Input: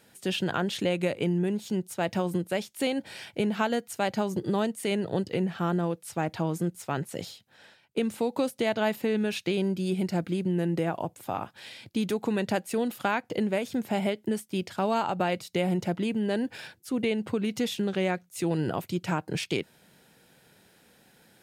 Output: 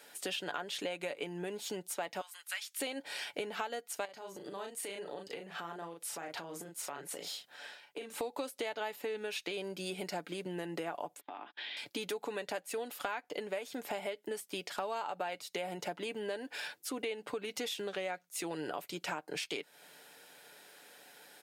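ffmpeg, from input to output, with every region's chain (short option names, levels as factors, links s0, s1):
-filter_complex "[0:a]asettb=1/sr,asplit=3[s0][s1][s2];[s0]atrim=end=2.214[s3];[s1]atrim=start=2.21:end=2.8,asetpts=PTS-STARTPTS,afade=t=in:d=0.004:c=qsin,afade=t=out:st=0.586:d=0.004:c=qsin,highpass=f=1300:w=0.5412,highpass=f=1300:w=1.3066,asoftclip=type=hard:threshold=0.0596[s4];[s2]atrim=start=2.796[s5];[s3][s4]acrossfade=d=0.004:c1=hsin:c2=qsin[s6];[s6][s5]acrossfade=d=0.004:c1=qsin:c2=hsin,asettb=1/sr,asplit=3[s7][s8][s9];[s7]atrim=end=4.054[s10];[s8]atrim=start=4.05:end=8.18,asetpts=PTS-STARTPTS,afade=t=in:d=0.004:c=qsin,afade=t=out:st=4.126:d=0.004:c=qsin,asplit=2[s11][s12];[s12]adelay=36,volume=0.596[s13];[s11][s13]amix=inputs=2:normalize=0,atrim=end_sample=182133,acompressor=threshold=0.0112:ratio=6:attack=3.2:release=140:knee=1:detection=peak[s14];[s9]atrim=start=8.176[s15];[s10][s14]acrossfade=d=0.004:c1=hsin:c2=qsin[s16];[s16][s15]acrossfade=d=0.004:c1=qsin:c2=hsin,asettb=1/sr,asplit=3[s17][s18][s19];[s17]atrim=end=11.204[s20];[s18]atrim=start=11.2:end=11.77,asetpts=PTS-STARTPTS,afade=t=in:d=0.004:c=qsin,afade=t=out:st=0.566:d=0.004:c=qsin,highpass=f=200:w=0.5412,highpass=f=200:w=1.3066,equalizer=f=230:t=q:w=4:g=5,equalizer=f=340:t=q:w=4:g=6,equalizer=f=520:t=q:w=4:g=-9,equalizer=f=1300:t=q:w=4:g=-4,equalizer=f=1800:t=q:w=4:g=3,equalizer=f=3400:t=q:w=4:g=5,lowpass=f=3800:w=0.5412,lowpass=f=3800:w=1.3066,agate=range=0.0282:threshold=0.00251:ratio=16:release=100:detection=peak,acompressor=threshold=0.00794:ratio=12:attack=3.2:release=140:knee=1:detection=peak[s21];[s19]atrim=start=11.766[s22];[s20][s21]acrossfade=d=0.004:c1=hsin:c2=qsin[s23];[s23][s22]acrossfade=d=0.004:c1=qsin:c2=hsin,highpass=470,aecho=1:1:6.9:0.39,acompressor=threshold=0.00891:ratio=4,volume=1.58"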